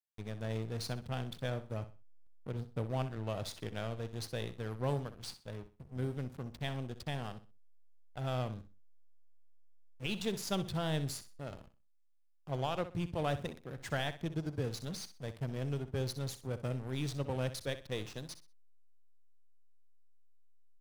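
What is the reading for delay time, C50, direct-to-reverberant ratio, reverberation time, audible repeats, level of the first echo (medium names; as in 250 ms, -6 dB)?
63 ms, no reverb, no reverb, no reverb, 2, -13.0 dB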